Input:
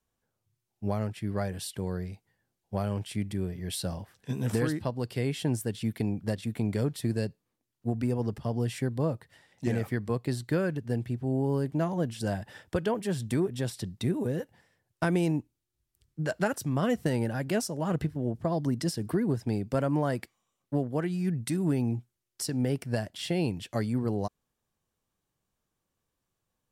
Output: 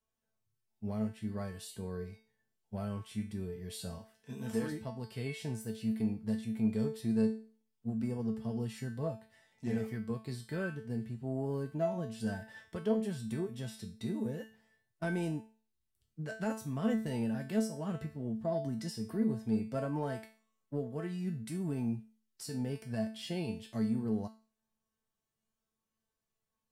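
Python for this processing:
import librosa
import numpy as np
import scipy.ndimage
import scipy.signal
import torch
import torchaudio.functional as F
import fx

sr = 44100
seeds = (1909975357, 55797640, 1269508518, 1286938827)

p1 = fx.low_shelf(x, sr, hz=120.0, db=-10.5, at=(3.99, 4.72))
p2 = fx.hpss(p1, sr, part='harmonic', gain_db=7)
p3 = fx.comb_fb(p2, sr, f0_hz=220.0, decay_s=0.39, harmonics='all', damping=0.0, mix_pct=90)
p4 = 10.0 ** (-31.0 / 20.0) * np.tanh(p3 / 10.0 ** (-31.0 / 20.0))
y = p3 + (p4 * 10.0 ** (-11.5 / 20.0))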